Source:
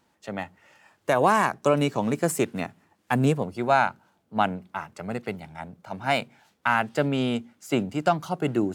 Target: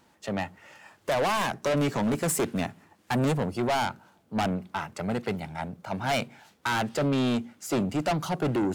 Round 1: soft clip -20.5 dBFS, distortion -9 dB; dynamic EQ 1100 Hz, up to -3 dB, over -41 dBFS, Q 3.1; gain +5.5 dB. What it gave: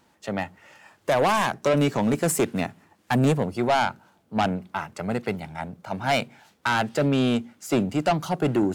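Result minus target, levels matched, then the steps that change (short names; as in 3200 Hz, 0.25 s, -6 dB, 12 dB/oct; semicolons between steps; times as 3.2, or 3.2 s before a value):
soft clip: distortion -4 dB
change: soft clip -27.5 dBFS, distortion -4 dB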